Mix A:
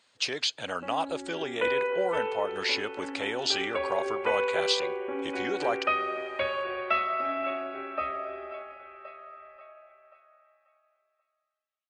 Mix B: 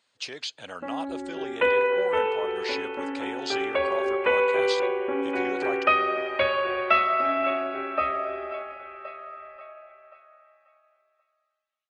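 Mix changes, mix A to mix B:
speech -5.5 dB; background +6.0 dB

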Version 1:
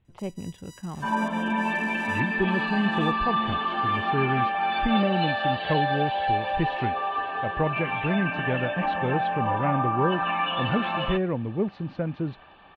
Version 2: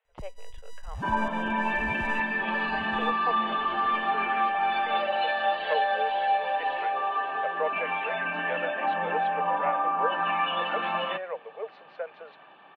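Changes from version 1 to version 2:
speech: add rippled Chebyshev high-pass 440 Hz, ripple 3 dB; first sound: remove HPF 600 Hz 24 dB/oct; master: add tone controls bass -8 dB, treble -9 dB

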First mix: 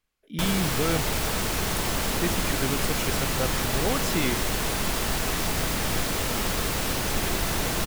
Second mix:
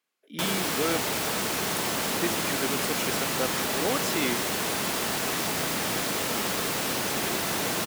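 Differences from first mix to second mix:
speech: add HPF 230 Hz 12 dB/oct; master: add HPF 180 Hz 12 dB/oct

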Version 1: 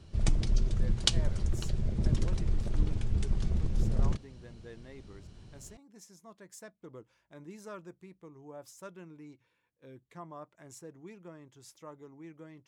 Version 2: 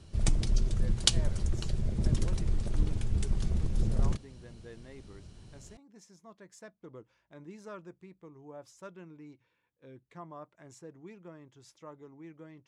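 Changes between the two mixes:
background: remove air absorption 110 m; master: add air absorption 60 m

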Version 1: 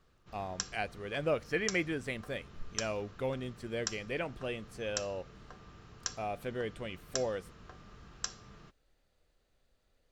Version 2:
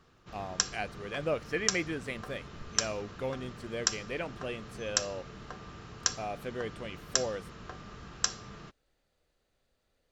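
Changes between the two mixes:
background +8.5 dB; master: add low shelf 61 Hz -7.5 dB

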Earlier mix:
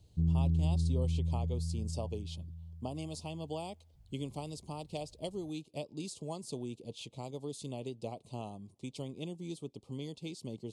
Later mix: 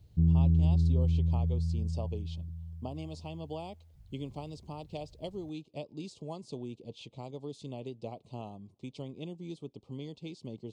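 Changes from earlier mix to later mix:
speech: add air absorption 110 m; background +5.0 dB

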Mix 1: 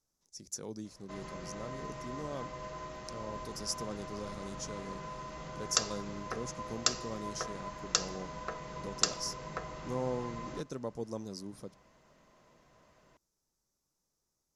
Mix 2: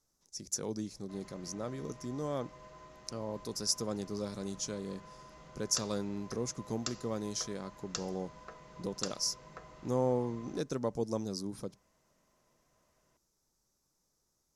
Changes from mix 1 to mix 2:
speech +5.0 dB; background -10.0 dB

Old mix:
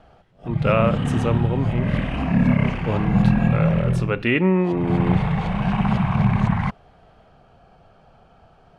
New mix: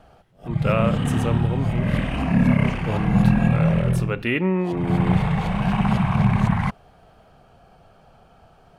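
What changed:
speech -3.5 dB; master: remove air absorption 69 m

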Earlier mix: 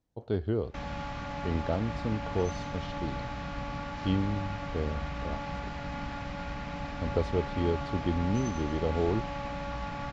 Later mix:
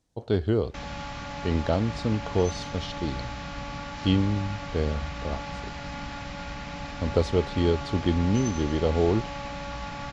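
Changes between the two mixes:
speech +5.5 dB; master: add high shelf 3300 Hz +10.5 dB

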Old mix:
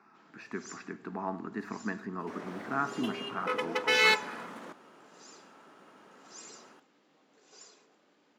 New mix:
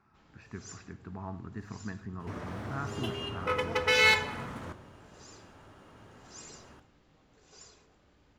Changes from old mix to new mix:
speech -8.0 dB; second sound: send on; master: remove HPF 220 Hz 24 dB/oct

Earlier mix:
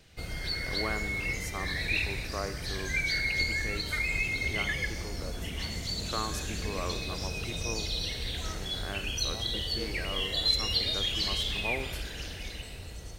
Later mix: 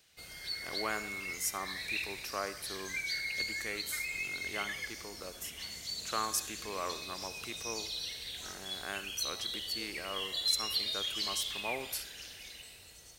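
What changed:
background -10.5 dB; master: add tilt +3 dB/oct

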